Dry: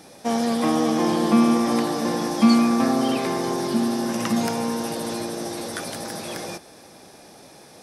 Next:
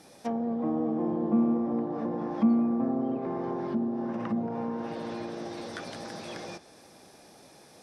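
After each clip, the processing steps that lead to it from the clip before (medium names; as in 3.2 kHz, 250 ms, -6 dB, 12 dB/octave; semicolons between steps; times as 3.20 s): low-pass that closes with the level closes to 650 Hz, closed at -19 dBFS; trim -7 dB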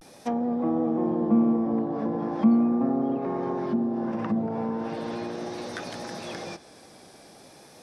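vibrato 0.39 Hz 56 cents; trim +3.5 dB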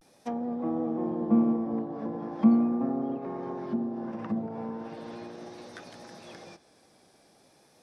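upward expansion 1.5:1, over -37 dBFS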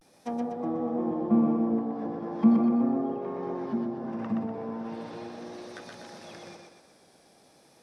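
thinning echo 123 ms, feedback 47%, high-pass 160 Hz, level -3.5 dB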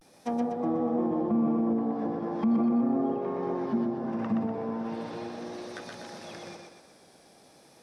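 peak limiter -21.5 dBFS, peak gain reduction 11 dB; trim +2.5 dB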